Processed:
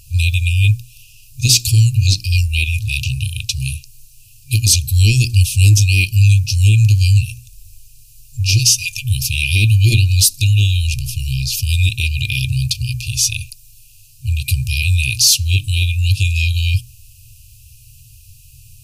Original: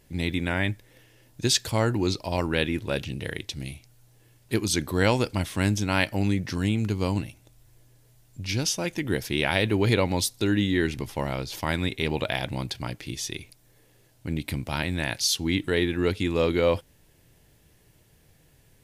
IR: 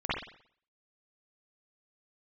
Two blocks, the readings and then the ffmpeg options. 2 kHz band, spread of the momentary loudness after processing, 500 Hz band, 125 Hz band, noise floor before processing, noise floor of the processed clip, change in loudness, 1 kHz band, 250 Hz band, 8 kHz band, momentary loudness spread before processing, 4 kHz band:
+8.0 dB, 10 LU, under -15 dB, +17.0 dB, -60 dBFS, -44 dBFS, +11.5 dB, under -30 dB, -5.5 dB, +15.5 dB, 10 LU, +12.0 dB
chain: -af "afftfilt=real='re*(1-between(b*sr/4096,130,2400))':imag='im*(1-between(b*sr/4096,130,2400))':win_size=4096:overlap=0.75,apsyclip=23dB,equalizer=f=3.4k:w=3.3:g=-10,bandreject=f=60:t=h:w=6,bandreject=f=120:t=h:w=6,bandreject=f=180:t=h:w=6,bandreject=f=240:t=h:w=6,bandreject=f=300:t=h:w=6,bandreject=f=360:t=h:w=6,volume=-4dB"

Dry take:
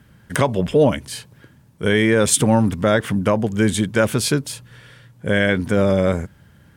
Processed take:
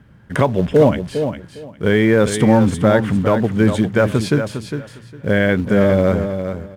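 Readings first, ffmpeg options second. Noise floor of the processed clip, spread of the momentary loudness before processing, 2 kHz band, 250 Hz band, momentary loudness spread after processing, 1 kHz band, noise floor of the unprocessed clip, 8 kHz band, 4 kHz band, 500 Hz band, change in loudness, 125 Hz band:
-44 dBFS, 14 LU, +0.5 dB, +3.5 dB, 12 LU, +2.0 dB, -52 dBFS, -10.0 dB, -4.0 dB, +3.0 dB, +2.0 dB, +3.5 dB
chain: -af "acrusher=bits=5:mode=log:mix=0:aa=0.000001,lowpass=f=1.6k:p=1,aecho=1:1:406|812|1218:0.376|0.0714|0.0136,volume=3dB"

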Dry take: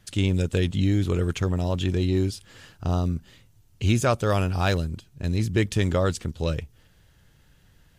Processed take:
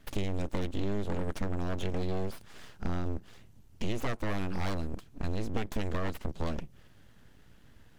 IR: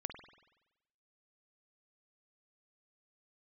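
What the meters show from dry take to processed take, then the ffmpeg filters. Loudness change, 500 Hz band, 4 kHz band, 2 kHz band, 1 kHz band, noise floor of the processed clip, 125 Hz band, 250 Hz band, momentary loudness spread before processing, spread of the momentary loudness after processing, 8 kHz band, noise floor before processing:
-11.0 dB, -10.0 dB, -11.5 dB, -9.5 dB, -8.5 dB, -57 dBFS, -12.5 dB, -9.5 dB, 7 LU, 7 LU, -13.5 dB, -59 dBFS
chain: -af "acompressor=threshold=-30dB:ratio=4,aeval=exprs='abs(val(0))':c=same,highshelf=f=3k:g=-7.5,volume=2.5dB"

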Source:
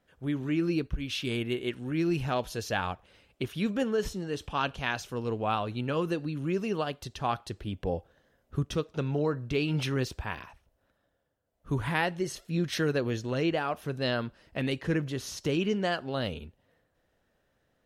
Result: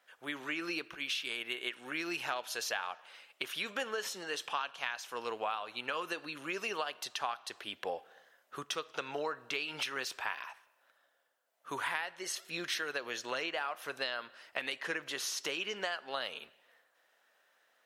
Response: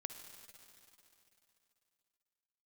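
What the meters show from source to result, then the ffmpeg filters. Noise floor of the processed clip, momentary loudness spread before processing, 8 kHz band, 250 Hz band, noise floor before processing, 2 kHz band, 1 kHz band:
-73 dBFS, 7 LU, +2.0 dB, -16.5 dB, -74 dBFS, -0.5 dB, -4.5 dB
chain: -filter_complex "[0:a]highpass=970,acompressor=threshold=-40dB:ratio=10,asplit=2[a][b];[1:a]atrim=start_sample=2205,afade=t=out:st=0.38:d=0.01,atrim=end_sample=17199,lowpass=3.6k[c];[b][c]afir=irnorm=-1:irlink=0,volume=-9dB[d];[a][d]amix=inputs=2:normalize=0,volume=6.5dB"

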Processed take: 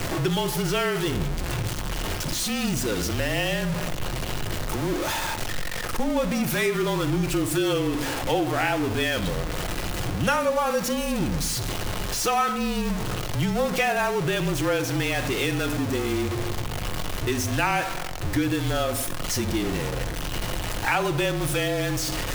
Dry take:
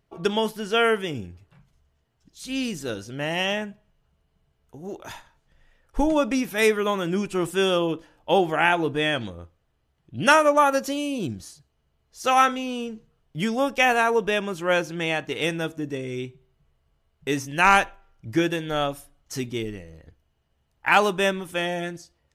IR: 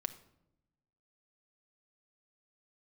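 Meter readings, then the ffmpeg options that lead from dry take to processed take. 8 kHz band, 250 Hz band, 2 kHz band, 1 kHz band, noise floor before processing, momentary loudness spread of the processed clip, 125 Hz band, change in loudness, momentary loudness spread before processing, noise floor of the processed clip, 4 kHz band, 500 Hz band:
+7.0 dB, +1.5 dB, -2.5 dB, -4.0 dB, -71 dBFS, 7 LU, +8.0 dB, -2.0 dB, 18 LU, -30 dBFS, +1.0 dB, -2.0 dB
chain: -filter_complex "[0:a]aeval=exprs='val(0)+0.5*0.1*sgn(val(0))':c=same[a];[1:a]atrim=start_sample=2205[b];[a][b]afir=irnorm=-1:irlink=0,afreqshift=-32,acompressor=threshold=-21dB:ratio=2.5,volume=-1dB"

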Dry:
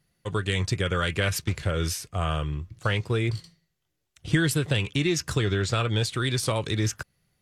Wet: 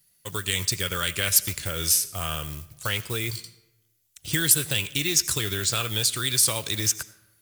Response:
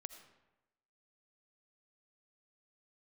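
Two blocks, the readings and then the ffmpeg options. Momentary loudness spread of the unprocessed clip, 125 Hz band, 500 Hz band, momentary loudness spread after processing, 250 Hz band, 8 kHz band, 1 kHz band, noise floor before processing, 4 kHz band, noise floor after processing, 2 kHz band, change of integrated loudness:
6 LU, -6.5 dB, -6.0 dB, 12 LU, -6.5 dB, +12.5 dB, -3.0 dB, -78 dBFS, +5.5 dB, -67 dBFS, 0.0 dB, +3.0 dB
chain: -filter_complex "[0:a]acrusher=bits=7:mode=log:mix=0:aa=0.000001,crystalizer=i=6.5:c=0,asplit=2[a][b];[1:a]atrim=start_sample=2205,highshelf=f=8.4k:g=11[c];[b][c]afir=irnorm=-1:irlink=0,volume=0dB[d];[a][d]amix=inputs=2:normalize=0,volume=-10.5dB"

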